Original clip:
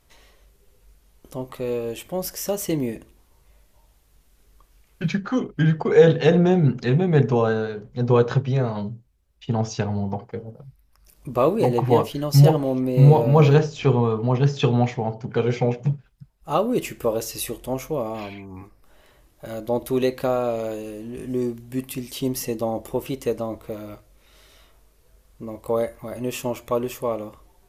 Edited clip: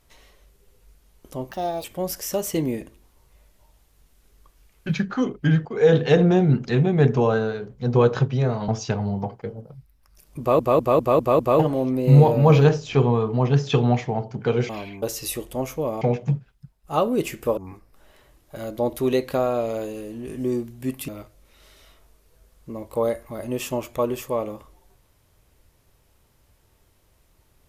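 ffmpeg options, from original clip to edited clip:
-filter_complex "[0:a]asplit=16[a][b][c][d][e][f][g][h][i][j][k][l][m][n][o][p];[a]atrim=end=1.514[q];[b]atrim=start=1.51:end=1.99,asetpts=PTS-STARTPTS,asetrate=63504,aresample=44100[r];[c]atrim=start=1.986:end=5.8,asetpts=PTS-STARTPTS,afade=t=out:st=3.81:d=0.004:c=hsin:silence=0.177828[s];[d]atrim=start=5.8:end=8.832,asetpts=PTS-STARTPTS,afade=t=in:d=0.33:silence=0.177828[t];[e]atrim=start=9.578:end=11.492[u];[f]atrim=start=11.288:end=11.492[v];[g]atrim=start=11.288:end=11.492[w];[h]atrim=start=11.288:end=11.492[x];[i]atrim=start=11.288:end=11.492[y];[j]atrim=start=11.288:end=11.492[z];[k]atrim=start=12.488:end=15.592[aa];[l]atrim=start=18.138:end=18.472[ab];[m]atrim=start=17.148:end=18.142[ac];[n]atrim=start=15.588:end=17.152[ad];[o]atrim=start=18.468:end=21.982[ae];[p]atrim=start=23.808[af];[q][r]acrossfade=d=0.004:c1=hsin:c2=hsin[ag];[s][t]concat=n=2:v=0:a=1[ah];[ag][ah]acrossfade=d=0.004:c1=hsin:c2=hsin[ai];[ai][u]acrossfade=d=0.004:c1=hsin:c2=hsin[aj];[aj][v]acrossfade=d=0.004:c1=hsin:c2=hsin[ak];[ak][w]acrossfade=d=0.004:c1=hsin:c2=hsin[al];[al][x]acrossfade=d=0.004:c1=hsin:c2=hsin[am];[am][y]acrossfade=d=0.004:c1=hsin:c2=hsin[an];[an][z]acrossfade=d=0.004:c1=hsin:c2=hsin[ao];[ao][aa]acrossfade=d=0.004:c1=hsin:c2=hsin[ap];[ap][ab]acrossfade=d=0.004:c1=hsin:c2=hsin[aq];[aq][ac]acrossfade=d=0.004:c1=hsin:c2=hsin[ar];[ar][ad]acrossfade=d=0.004:c1=hsin:c2=hsin[as];[as][ae]acrossfade=d=0.004:c1=hsin:c2=hsin[at];[at][af]acrossfade=d=0.004:c1=hsin:c2=hsin"

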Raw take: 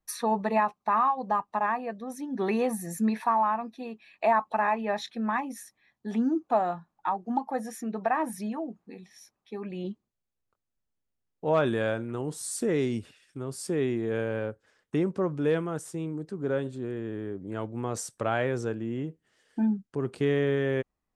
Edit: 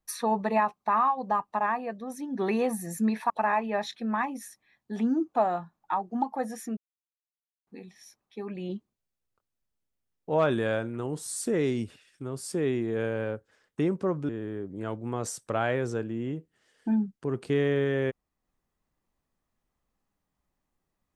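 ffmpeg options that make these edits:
-filter_complex "[0:a]asplit=5[a][b][c][d][e];[a]atrim=end=3.302[f];[b]atrim=start=4.448:end=7.92,asetpts=PTS-STARTPTS,afade=t=out:st=3.468:d=0.004:c=hsin[g];[c]atrim=start=7.92:end=8.82,asetpts=PTS-STARTPTS,volume=0[h];[d]atrim=start=8.82:end=15.442,asetpts=PTS-STARTPTS,afade=t=in:d=0.004:c=hsin[i];[e]atrim=start=16.998[j];[g][h][i]concat=n=3:v=0:a=1[k];[f][k]acrossfade=d=0.004:c1=hsin:c2=hsin[l];[l][j]acrossfade=d=0.004:c1=hsin:c2=hsin"

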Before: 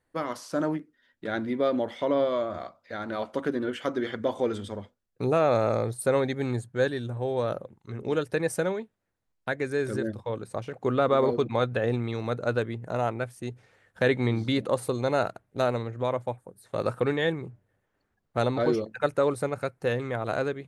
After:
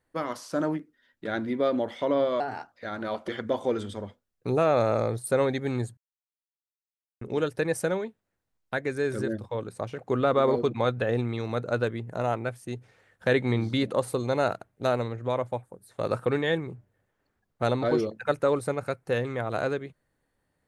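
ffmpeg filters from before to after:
-filter_complex "[0:a]asplit=6[a][b][c][d][e][f];[a]atrim=end=2.404[g];[b]atrim=start=2.4:end=2.8,asetpts=PTS-STARTPTS,asetrate=54684,aresample=44100[h];[c]atrim=start=2.796:end=3.362[i];[d]atrim=start=4.028:end=6.72,asetpts=PTS-STARTPTS,afade=t=out:st=2.688:d=0.004:c=hsin[j];[e]atrim=start=6.72:end=7.96,asetpts=PTS-STARTPTS,volume=0[k];[f]atrim=start=7.96,asetpts=PTS-STARTPTS,afade=t=in:d=0.004:c=hsin[l];[g][h]acrossfade=d=0.004:c1=hsin:c2=hsin[m];[m][i]acrossfade=d=0.004:c1=hsin:c2=hsin[n];[j][k][l]concat=n=3:v=0:a=1[o];[n][o]acrossfade=d=0.004:c1=hsin:c2=hsin"

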